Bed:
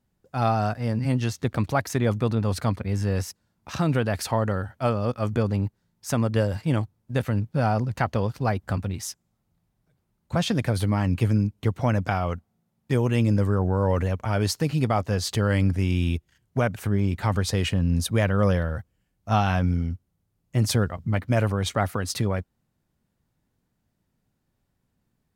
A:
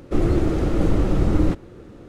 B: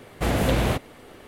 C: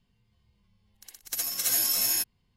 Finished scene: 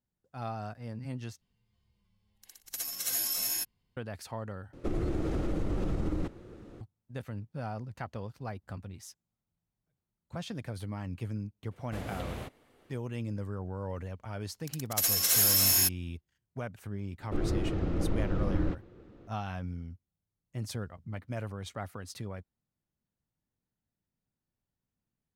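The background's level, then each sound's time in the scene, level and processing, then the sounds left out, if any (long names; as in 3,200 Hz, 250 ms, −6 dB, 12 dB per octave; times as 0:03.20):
bed −15 dB
0:01.41: overwrite with C −6 dB
0:04.73: overwrite with A −7 dB + downward compressor, threshold −19 dBFS
0:11.71: mix in B −17.5 dB
0:13.65: mix in C −6 dB + leveller curve on the samples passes 3
0:17.20: mix in A −11.5 dB + low-pass filter 4,300 Hz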